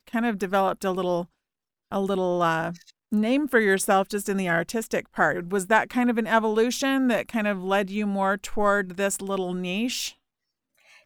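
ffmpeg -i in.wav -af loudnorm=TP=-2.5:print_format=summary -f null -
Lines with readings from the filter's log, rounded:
Input Integrated:    -24.9 LUFS
Input True Peak:      -5.9 dBTP
Input LRA:             3.8 LU
Input Threshold:     -35.2 LUFS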